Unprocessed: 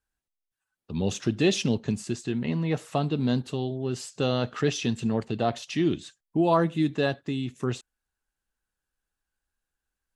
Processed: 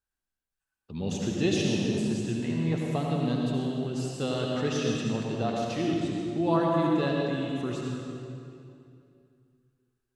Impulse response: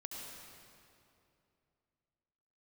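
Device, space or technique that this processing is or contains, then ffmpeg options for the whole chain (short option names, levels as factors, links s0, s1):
stairwell: -filter_complex "[1:a]atrim=start_sample=2205[s0];[0:a][s0]afir=irnorm=-1:irlink=0"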